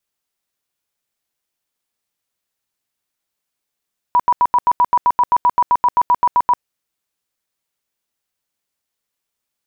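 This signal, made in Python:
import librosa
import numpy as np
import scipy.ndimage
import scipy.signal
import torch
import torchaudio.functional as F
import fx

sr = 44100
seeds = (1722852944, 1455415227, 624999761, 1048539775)

y = fx.tone_burst(sr, hz=977.0, cycles=45, every_s=0.13, bursts=19, level_db=-9.0)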